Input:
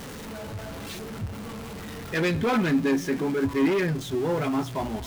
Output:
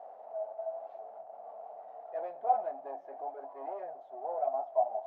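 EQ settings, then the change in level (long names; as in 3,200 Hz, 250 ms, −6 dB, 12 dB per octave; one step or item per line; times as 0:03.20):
flat-topped band-pass 690 Hz, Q 4.8
spectral tilt +2.5 dB per octave
+8.0 dB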